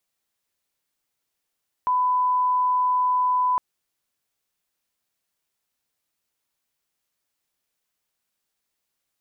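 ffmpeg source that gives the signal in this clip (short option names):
-f lavfi -i "sine=f=1000:d=1.71:r=44100,volume=0.06dB"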